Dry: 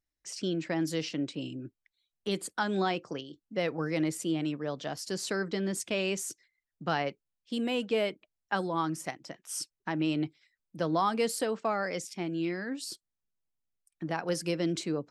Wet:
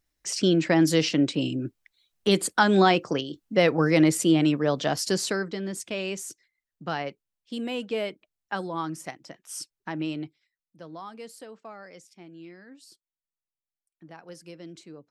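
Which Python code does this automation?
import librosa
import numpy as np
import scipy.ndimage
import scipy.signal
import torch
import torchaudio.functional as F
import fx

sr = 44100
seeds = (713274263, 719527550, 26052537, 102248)

y = fx.gain(x, sr, db=fx.line((5.08, 10.5), (5.55, -0.5), (10.02, -0.5), (10.79, -13.0)))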